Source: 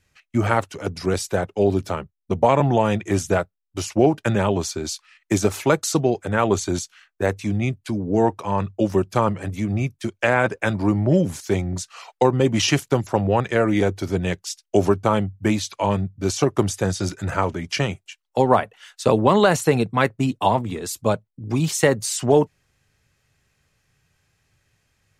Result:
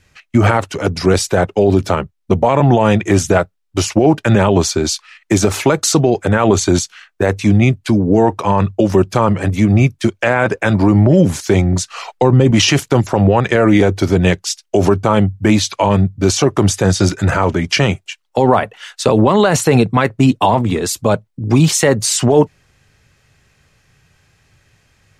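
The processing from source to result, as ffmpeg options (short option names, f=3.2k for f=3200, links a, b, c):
-filter_complex "[0:a]asettb=1/sr,asplit=3[a][b][c];[a]atrim=end=11.914[d];[b]atrim=start=11.91:end=12.51,asetpts=PTS-STARTPTS,afade=t=in:d=0.004:c=qsin,afade=t=out:st=0.596:d=0.004:c=qsin,lowshelf=f=240:g=8[e];[c]atrim=start=12.506[f];[d][e]acrossfade=d=0.004:c1=hsin:c2=qsin[g];[g][f]acrossfade=d=0.004:c1=qsin:c2=hsin,highshelf=f=10k:g=-8.5,alimiter=level_in=13dB:limit=-1dB:release=50:level=0:latency=1,volume=-1dB"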